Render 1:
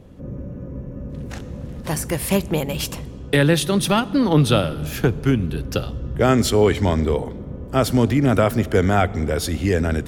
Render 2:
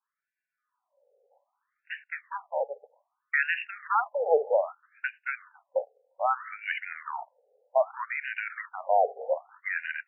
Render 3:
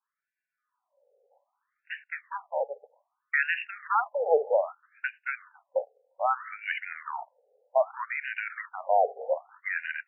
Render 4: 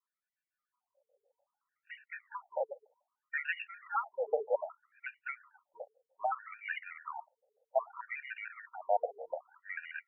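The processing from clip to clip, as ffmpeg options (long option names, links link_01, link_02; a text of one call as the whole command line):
ffmpeg -i in.wav -filter_complex "[0:a]agate=range=-25dB:threshold=-22dB:ratio=16:detection=peak,acrossover=split=400[link_01][link_02];[link_02]acompressor=threshold=-18dB:ratio=6[link_03];[link_01][link_03]amix=inputs=2:normalize=0,afftfilt=real='re*between(b*sr/1024,590*pow(2100/590,0.5+0.5*sin(2*PI*0.63*pts/sr))/1.41,590*pow(2100/590,0.5+0.5*sin(2*PI*0.63*pts/sr))*1.41)':imag='im*between(b*sr/1024,590*pow(2100/590,0.5+0.5*sin(2*PI*0.63*pts/sr))/1.41,590*pow(2100/590,0.5+0.5*sin(2*PI*0.63*pts/sr))*1.41)':win_size=1024:overlap=0.75,volume=1.5dB" out.wav
ffmpeg -i in.wav -af anull out.wav
ffmpeg -i in.wav -af "afftfilt=real='re*gt(sin(2*PI*6.8*pts/sr)*(1-2*mod(floor(b*sr/1024/470),2)),0)':imag='im*gt(sin(2*PI*6.8*pts/sr)*(1-2*mod(floor(b*sr/1024/470),2)),0)':win_size=1024:overlap=0.75,volume=-4.5dB" out.wav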